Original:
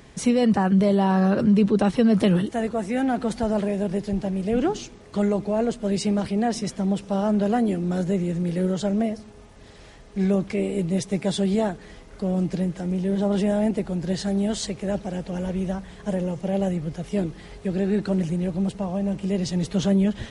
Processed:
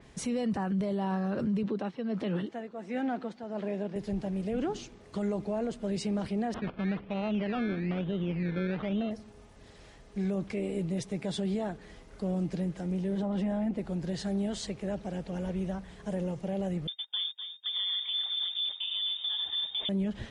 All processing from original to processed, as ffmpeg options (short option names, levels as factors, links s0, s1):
-filter_complex "[0:a]asettb=1/sr,asplit=3[s0][s1][s2];[s0]atrim=end=1.634[s3];[s1]atrim=start=1.63:end=3.96,asetpts=PTS-STARTPTS,afade=t=in:d=0.004:c=qsin,afade=t=out:st=2.326:d=0.004:c=qsin,tremolo=f=1.4:d=0.67,highpass=190,lowpass=4700[s4];[s2]atrim=start=3.956[s5];[s3][s4]acrossfade=d=0.004:c1=hsin:c2=qsin[s6];[s6][s5]acrossfade=d=0.004:c1=qsin:c2=hsin,asettb=1/sr,asplit=3[s7][s8][s9];[s7]atrim=end=6.544[s10];[s8]atrim=start=6.54:end=9.11,asetpts=PTS-STARTPTS,afade=t=in:d=0.004:c=qsin,afade=t=out:st=2.566:d=0.004:c=qsin,acrusher=samples=18:mix=1:aa=0.000001:lfo=1:lforange=10.8:lforate=1.1,lowpass=f=3300:w=0.5412,lowpass=f=3300:w=1.3066[s11];[s9]atrim=start=9.106[s12];[s10][s11]acrossfade=d=0.004:c1=hsin:c2=qsin[s13];[s13][s12]acrossfade=d=0.004:c1=qsin:c2=hsin,asettb=1/sr,asplit=3[s14][s15][s16];[s14]atrim=end=13.224[s17];[s15]atrim=start=13.22:end=13.79,asetpts=PTS-STARTPTS,afade=t=in:d=0.004:c=qsin,afade=t=out:st=0.566:d=0.004:c=qsin,highshelf=f=4200:g=-11.5,bandreject=f=430:w=7.7,aecho=1:1:3.9:0.33,atrim=end_sample=25137[s18];[s16]atrim=start=13.786[s19];[s17][s18]acrossfade=d=0.004:c1=hsin:c2=qsin[s20];[s20][s19]acrossfade=d=0.004:c1=qsin:c2=hsin,asettb=1/sr,asplit=3[s21][s22][s23];[s21]atrim=end=16.874[s24];[s22]atrim=start=16.87:end=19.89,asetpts=PTS-STARTPTS,afade=t=in:d=0.004:c=qsin,afade=t=out:st=3.016:d=0.004:c=qsin,agate=range=0.0282:threshold=0.0224:ratio=16:release=100:detection=peak,asplit=8[s25][s26][s27][s28][s29][s30][s31][s32];[s26]adelay=250,afreqshift=-47,volume=0.299[s33];[s27]adelay=500,afreqshift=-94,volume=0.182[s34];[s28]adelay=750,afreqshift=-141,volume=0.111[s35];[s29]adelay=1000,afreqshift=-188,volume=0.0676[s36];[s30]adelay=1250,afreqshift=-235,volume=0.0412[s37];[s31]adelay=1500,afreqshift=-282,volume=0.0251[s38];[s32]adelay=1750,afreqshift=-329,volume=0.0153[s39];[s25][s33][s34][s35][s36][s37][s38][s39]amix=inputs=8:normalize=0,atrim=end_sample=133182,lowpass=f=3100:t=q:w=0.5098,lowpass=f=3100:t=q:w=0.6013,lowpass=f=3100:t=q:w=0.9,lowpass=f=3100:t=q:w=2.563,afreqshift=-3700[s40];[s23]atrim=start=19.886[s41];[s24][s40]acrossfade=d=0.004:c1=hsin:c2=qsin[s42];[s42][s41]acrossfade=d=0.004:c1=qsin:c2=hsin,alimiter=limit=0.133:level=0:latency=1:release=46,adynamicequalizer=threshold=0.00316:dfrequency=5100:dqfactor=0.7:tfrequency=5100:tqfactor=0.7:attack=5:release=100:ratio=0.375:range=2.5:mode=cutabove:tftype=highshelf,volume=0.473"